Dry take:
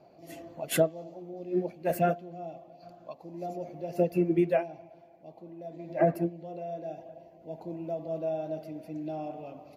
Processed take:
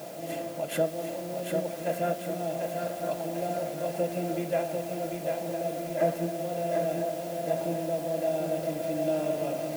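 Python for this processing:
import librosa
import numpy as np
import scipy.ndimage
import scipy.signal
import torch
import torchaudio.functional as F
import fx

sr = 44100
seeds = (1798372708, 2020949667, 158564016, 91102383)

p1 = fx.bin_compress(x, sr, power=0.6)
p2 = fx.high_shelf(p1, sr, hz=4100.0, db=-4.5)
p3 = p2 + fx.echo_wet_bandpass(p2, sr, ms=1000, feedback_pct=47, hz=1000.0, wet_db=-14.5, dry=0)
p4 = fx.rider(p3, sr, range_db=3, speed_s=0.5)
p5 = fx.quant_dither(p4, sr, seeds[0], bits=8, dither='triangular')
p6 = fx.low_shelf(p5, sr, hz=100.0, db=-11.0)
p7 = fx.notch_comb(p6, sr, f0_hz=370.0)
p8 = fx.echo_crushed(p7, sr, ms=745, feedback_pct=55, bits=8, wet_db=-4.0)
y = p8 * 10.0 ** (-1.0 / 20.0)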